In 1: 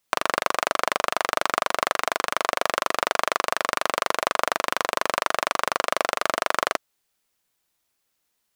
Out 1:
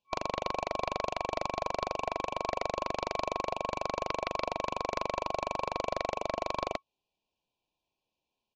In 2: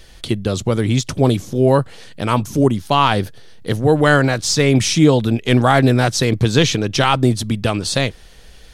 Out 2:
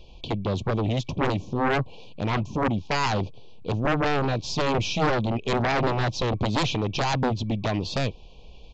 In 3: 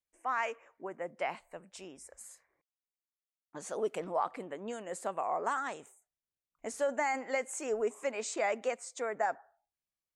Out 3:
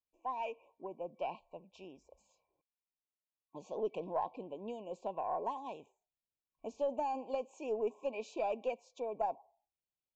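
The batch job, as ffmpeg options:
-af "afftfilt=real='re*(1-between(b*sr/4096,1100,2300))':imag='im*(1-between(b*sr/4096,1100,2300))':win_size=4096:overlap=0.75,lowpass=2.9k,aeval=exprs='0.841*(cos(1*acos(clip(val(0)/0.841,-1,1)))-cos(1*PI/2))+0.335*(cos(3*acos(clip(val(0)/0.841,-1,1)))-cos(3*PI/2))+0.0944*(cos(6*acos(clip(val(0)/0.841,-1,1)))-cos(6*PI/2))+0.211*(cos(7*acos(clip(val(0)/0.841,-1,1)))-cos(7*PI/2))':c=same,aresample=16000,aeval=exprs='clip(val(0),-1,0.398)':c=same,aresample=44100,volume=-8.5dB"

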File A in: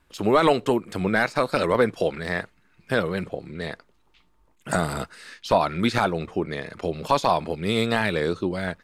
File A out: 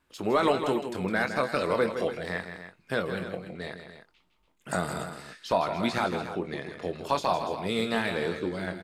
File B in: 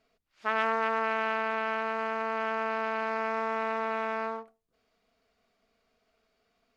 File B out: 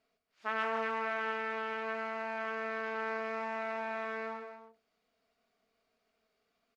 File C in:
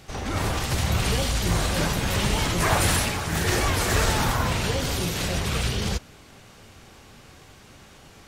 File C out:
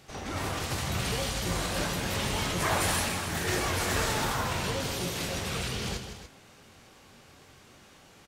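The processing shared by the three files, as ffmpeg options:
-filter_complex "[0:a]lowshelf=f=78:g=-10,asplit=2[a][b];[b]adelay=22,volume=-10dB[c];[a][c]amix=inputs=2:normalize=0,asplit=2[d][e];[e]aecho=0:1:160.3|288.6:0.355|0.251[f];[d][f]amix=inputs=2:normalize=0,volume=-6dB"

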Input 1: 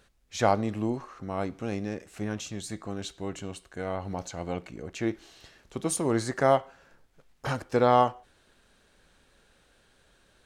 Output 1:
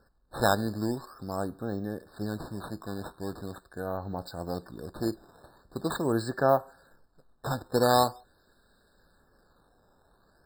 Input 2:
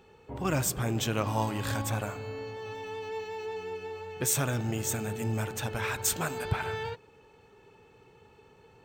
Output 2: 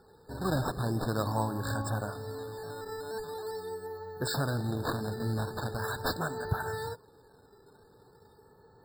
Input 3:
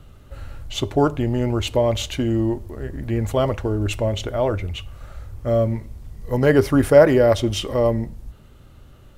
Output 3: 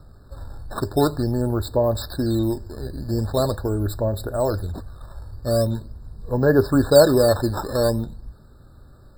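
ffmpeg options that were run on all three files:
-af "acrusher=samples=11:mix=1:aa=0.000001:lfo=1:lforange=17.6:lforate=0.43,afftfilt=real='re*eq(mod(floor(b*sr/1024/1800),2),0)':imag='im*eq(mod(floor(b*sr/1024/1800),2),0)':win_size=1024:overlap=0.75,volume=-1dB"

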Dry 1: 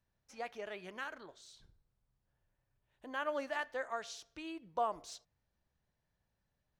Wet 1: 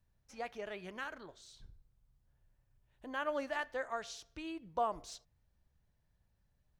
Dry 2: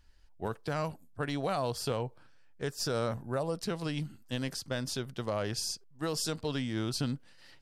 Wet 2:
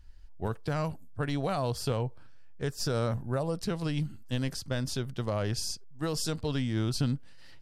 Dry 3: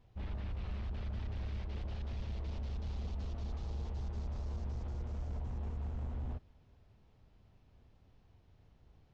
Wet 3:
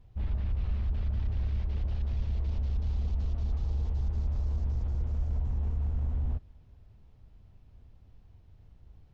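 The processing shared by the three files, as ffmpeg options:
-af "lowshelf=f=130:g=12"

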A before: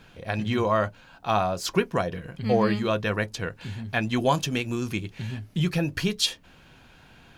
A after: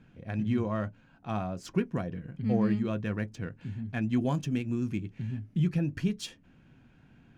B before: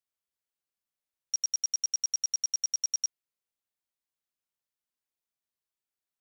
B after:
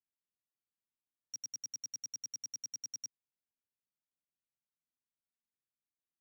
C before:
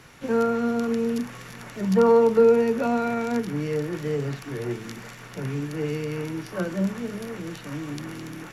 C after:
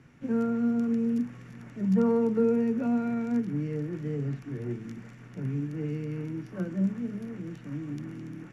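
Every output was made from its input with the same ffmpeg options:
-af "equalizer=f=125:t=o:w=1:g=6,equalizer=f=250:t=o:w=1:g=8,equalizer=f=500:t=o:w=1:g=-3,equalizer=f=1k:t=o:w=1:g=-5,equalizer=f=4k:t=o:w=1:g=-9,adynamicsmooth=sensitivity=6.5:basefreq=6k,volume=-8.5dB"

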